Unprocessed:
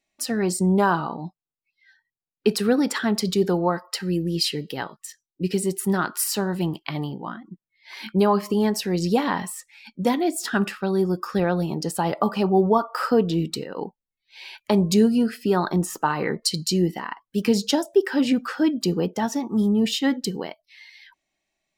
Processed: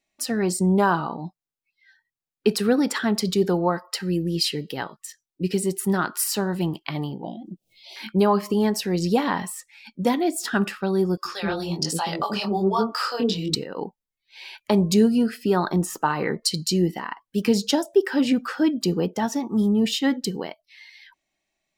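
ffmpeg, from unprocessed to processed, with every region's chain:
-filter_complex "[0:a]asettb=1/sr,asplit=3[a][b][c];[a]atrim=end=7.244[d];[b]atrim=start=7.24:end=7.96,asetpts=PTS-STARTPTS,afade=t=in:d=0.004:c=qsin,afade=t=out:st=0.716:d=0.004:c=qsin,equalizer=f=760:w=0.58:g=7,acompressor=mode=upward:threshold=-30dB:ratio=2.5:attack=3.2:release=140:knee=2.83:detection=peak,asuperstop=centerf=1400:order=8:qfactor=0.71[e];[c]atrim=start=7.956[f];[d][e]acrossfade=d=0.004:c1=hsin:c2=qsin[g];[g][f]acrossfade=d=0.004:c1=qsin:c2=hsin,asettb=1/sr,asplit=3[h][i][j];[h]atrim=end=11.174[k];[i]atrim=start=11.17:end=13.55,asetpts=PTS-STARTPTS,afade=t=in:d=0.004:c=qsin,afade=t=out:st=2.376:d=0.004:c=qsin,equalizer=f=4.7k:t=o:w=2:g=12.5,acrossover=split=540[l][m];[l]adelay=80[n];[n][m]amix=inputs=2:normalize=0,atrim=end_sample=104958,flanger=delay=18:depth=7.7:speed=1.2[o];[j]atrim=start=13.546[p];[k][o]acrossfade=d=0.004:c1=hsin:c2=qsin[q];[q][p]acrossfade=d=0.004:c1=qsin:c2=hsin"

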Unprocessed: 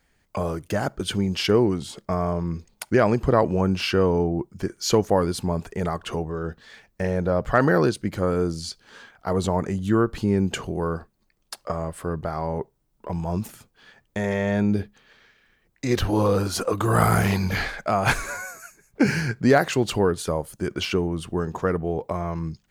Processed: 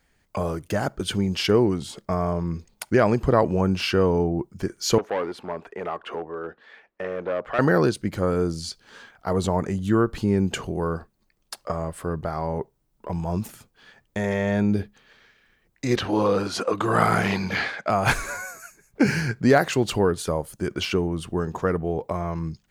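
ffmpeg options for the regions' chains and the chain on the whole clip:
-filter_complex "[0:a]asettb=1/sr,asplit=3[a][b][c];[a]atrim=end=4.984[d];[b]atrim=start=4.98:end=7.59,asetpts=PTS-STARTPTS,afade=t=in:d=0.004:c=qsin,afade=t=out:st=2.606:d=0.004:c=qsin,asoftclip=type=hard:threshold=-20dB,acrossover=split=290 3100:gain=0.0794 1 0.1[e][f][g];[e][f][g]amix=inputs=3:normalize=0[h];[c]atrim=start=7.586[i];[d][h]acrossfade=d=0.004:c1=hsin:c2=qsin[j];[j][i]acrossfade=d=0.004:c1=qsin:c2=hsin,asettb=1/sr,asplit=3[k][l][m];[k]atrim=end=15.964[n];[l]atrim=start=15.96:end=17.9,asetpts=PTS-STARTPTS,afade=t=in:d=0.004:c=qsin,afade=t=out:st=1.936:d=0.004:c=qsin,highpass=160,lowpass=3.1k,aemphasis=mode=production:type=75kf[o];[m]atrim=start=17.896[p];[n][o]acrossfade=d=0.004:c1=hsin:c2=qsin[q];[q][p]acrossfade=d=0.004:c1=qsin:c2=hsin"

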